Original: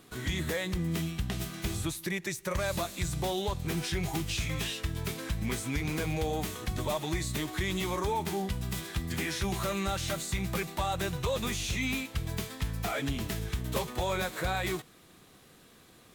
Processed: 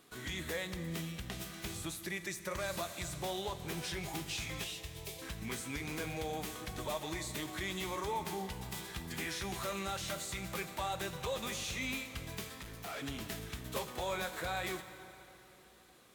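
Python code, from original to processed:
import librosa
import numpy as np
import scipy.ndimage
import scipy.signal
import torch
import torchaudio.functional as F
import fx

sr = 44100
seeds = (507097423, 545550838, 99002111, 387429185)

y = fx.overload_stage(x, sr, gain_db=34.5, at=(12.59, 13.01))
y = fx.low_shelf(y, sr, hz=220.0, db=-9.0)
y = fx.fixed_phaser(y, sr, hz=580.0, stages=4, at=(4.64, 5.22))
y = fx.rev_plate(y, sr, seeds[0], rt60_s=3.6, hf_ratio=0.75, predelay_ms=0, drr_db=9.5)
y = y * librosa.db_to_amplitude(-5.0)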